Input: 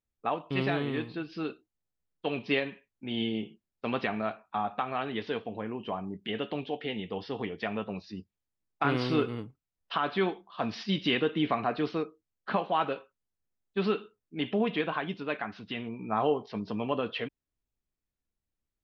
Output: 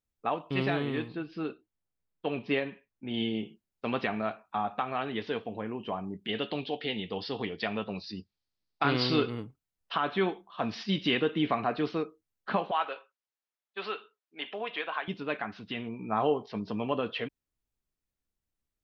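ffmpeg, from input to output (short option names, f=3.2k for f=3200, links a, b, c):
-filter_complex "[0:a]asettb=1/sr,asplit=3[a][b][c];[a]atrim=end=1.084[d];[b]atrim=start=1.08:end=3.14,asetpts=PTS-STARTPTS,afade=t=in:d=0.004:c=qsin,afade=t=out:st=2.056:d=0.004:c=qsin,highshelf=f=4k:g=-11[e];[c]atrim=start=3.136[f];[d][e]acrossfade=d=0.004:c1=hsin:c2=qsin[g];[g][f]acrossfade=d=0.004:c1=qsin:c2=hsin,asettb=1/sr,asplit=3[h][i][j];[h]atrim=end=6.294[k];[i]atrim=start=6.29:end=9.3,asetpts=PTS-STARTPTS,afade=t=in:d=0.004:c=qsin,afade=t=out:st=3.006:d=0.004:c=qsin,lowpass=f=4.6k:t=q:w=3.7[l];[j]atrim=start=9.296[m];[k][l]acrossfade=d=0.004:c1=hsin:c2=qsin[n];[n][m]acrossfade=d=0.004:c1=qsin:c2=hsin,asettb=1/sr,asplit=3[o][p][q];[o]atrim=end=10.034[r];[p]atrim=start=10.03:end=10.66,asetpts=PTS-STARTPTS,afade=t=in:d=0.004:c=qsin,afade=t=out:st=0.626:d=0.004:c=qsin,bandreject=f=4.7k:w=5.4[s];[q]atrim=start=10.656[t];[r][s]acrossfade=d=0.004:c1=hsin:c2=qsin[u];[u][t]acrossfade=d=0.004:c1=qsin:c2=hsin,asettb=1/sr,asplit=3[v][w][x];[v]atrim=end=12.714[y];[w]atrim=start=12.71:end=15.08,asetpts=PTS-STARTPTS,afade=t=in:d=0.004:c=qsin,afade=t=out:st=2.366:d=0.004:c=qsin,highpass=700,lowpass=5.2k[z];[x]atrim=start=15.076[aa];[y][z]acrossfade=d=0.004:c1=hsin:c2=qsin[ab];[ab][aa]acrossfade=d=0.004:c1=qsin:c2=hsin"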